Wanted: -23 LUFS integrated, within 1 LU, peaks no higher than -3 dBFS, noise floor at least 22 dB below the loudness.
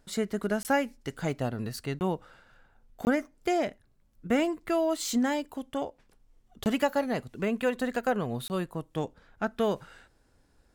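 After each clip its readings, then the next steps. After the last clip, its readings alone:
dropouts 5; longest dropout 19 ms; loudness -30.5 LUFS; peak -13.0 dBFS; loudness target -23.0 LUFS
-> interpolate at 0.63/1.99/3.05/6.64/8.48, 19 ms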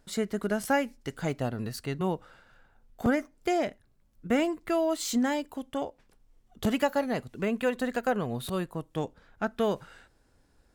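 dropouts 0; loudness -30.5 LUFS; peak -13.0 dBFS; loudness target -23.0 LUFS
-> gain +7.5 dB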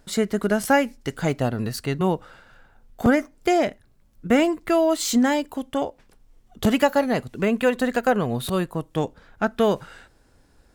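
loudness -23.0 LUFS; peak -5.5 dBFS; noise floor -59 dBFS

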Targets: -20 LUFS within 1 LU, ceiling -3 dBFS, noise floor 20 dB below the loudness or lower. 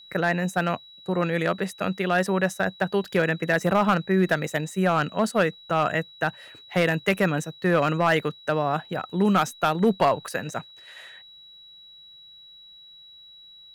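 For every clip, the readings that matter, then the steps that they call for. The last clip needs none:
clipped 0.3%; flat tops at -12.5 dBFS; steady tone 3900 Hz; tone level -46 dBFS; loudness -24.5 LUFS; peak -12.5 dBFS; loudness target -20.0 LUFS
-> clip repair -12.5 dBFS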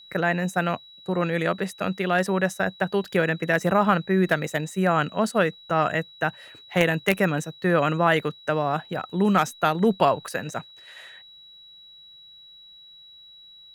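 clipped 0.0%; steady tone 3900 Hz; tone level -46 dBFS
-> notch 3900 Hz, Q 30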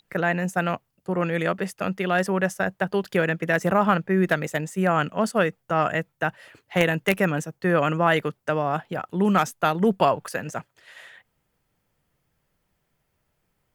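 steady tone none; loudness -24.0 LUFS; peak -3.5 dBFS; loudness target -20.0 LUFS
-> gain +4 dB; limiter -3 dBFS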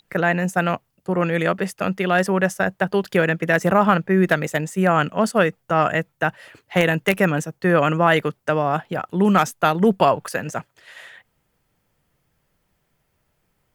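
loudness -20.0 LUFS; peak -3.0 dBFS; noise floor -70 dBFS

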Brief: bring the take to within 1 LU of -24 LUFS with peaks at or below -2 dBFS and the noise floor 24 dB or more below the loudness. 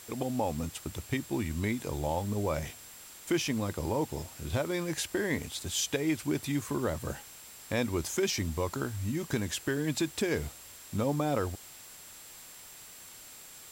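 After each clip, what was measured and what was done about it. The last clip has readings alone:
steady tone 7600 Hz; tone level -53 dBFS; noise floor -50 dBFS; noise floor target -57 dBFS; loudness -32.5 LUFS; peak -18.5 dBFS; loudness target -24.0 LUFS
-> notch 7600 Hz, Q 30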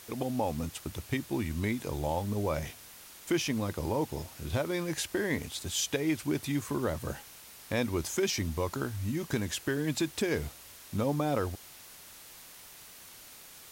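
steady tone none; noise floor -51 dBFS; noise floor target -57 dBFS
-> noise print and reduce 6 dB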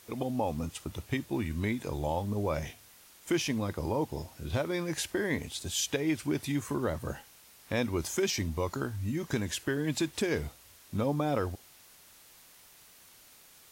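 noise floor -57 dBFS; loudness -32.5 LUFS; peak -18.5 dBFS; loudness target -24.0 LUFS
-> gain +8.5 dB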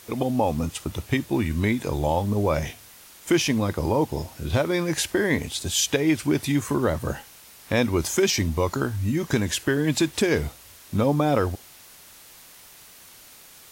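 loudness -24.0 LUFS; peak -10.0 dBFS; noise floor -49 dBFS

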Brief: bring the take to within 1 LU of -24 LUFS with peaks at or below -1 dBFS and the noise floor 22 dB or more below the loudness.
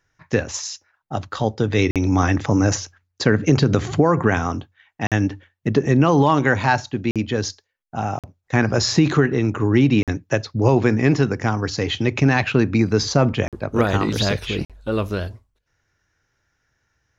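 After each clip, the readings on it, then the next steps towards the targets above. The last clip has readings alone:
dropouts 7; longest dropout 47 ms; loudness -20.0 LUFS; peak -2.5 dBFS; loudness target -24.0 LUFS
-> interpolate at 1.91/5.07/7.11/8.19/10.03/13.48/14.65, 47 ms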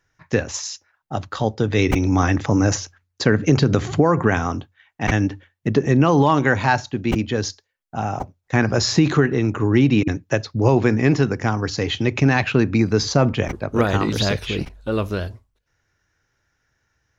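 dropouts 0; loudness -20.0 LUFS; peak -2.5 dBFS; loudness target -24.0 LUFS
-> gain -4 dB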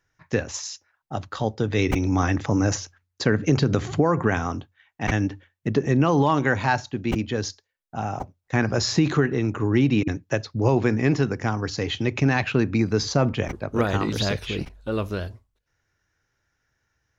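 loudness -24.0 LUFS; peak -6.5 dBFS; noise floor -76 dBFS

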